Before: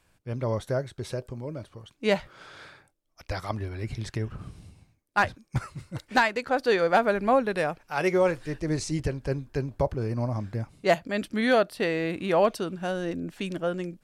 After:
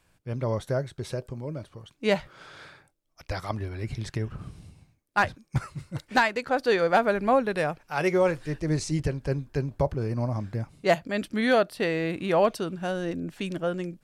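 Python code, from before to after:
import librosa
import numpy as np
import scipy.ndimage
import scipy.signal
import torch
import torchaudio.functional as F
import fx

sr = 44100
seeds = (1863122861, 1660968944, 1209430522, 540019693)

y = fx.peak_eq(x, sr, hz=150.0, db=4.0, octaves=0.28)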